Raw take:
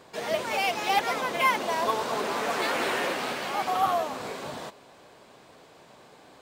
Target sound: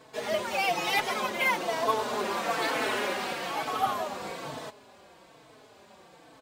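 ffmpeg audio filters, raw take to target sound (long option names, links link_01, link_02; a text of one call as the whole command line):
ffmpeg -i in.wav -filter_complex "[0:a]asettb=1/sr,asplit=3[link_01][link_02][link_03];[link_01]atrim=end=0.704[link_04];[link_02]atrim=start=0.7:end=1.29,asetpts=PTS-STARTPTS,afade=type=in:duration=0.004:curve=qsin,afade=type=out:start_time=0.586:duration=0.004:curve=qsin,aecho=1:1:5.5:0.79,atrim=end_sample=26019[link_05];[link_03]atrim=start=1.286[link_06];[link_04][link_05]acrossfade=duration=0.004:curve1=hsin:curve2=qsin[link_07];[link_07][link_06]acrossfade=duration=0.004:curve1=qsin:curve2=hsin,asplit=2[link_08][link_09];[link_09]adelay=4.1,afreqshift=-1.1[link_10];[link_08][link_10]amix=inputs=2:normalize=1,volume=1.5dB" out.wav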